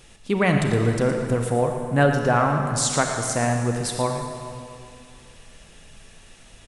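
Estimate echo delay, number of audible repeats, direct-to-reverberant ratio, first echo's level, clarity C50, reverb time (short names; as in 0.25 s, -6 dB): 0.116 s, 1, 3.0 dB, -10.5 dB, 3.5 dB, 2.4 s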